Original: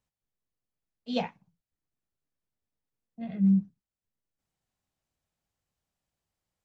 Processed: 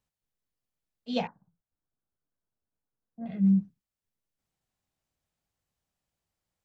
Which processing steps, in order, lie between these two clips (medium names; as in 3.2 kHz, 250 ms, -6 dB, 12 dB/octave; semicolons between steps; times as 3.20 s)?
1.27–3.26 s: elliptic low-pass 1.6 kHz, stop band 40 dB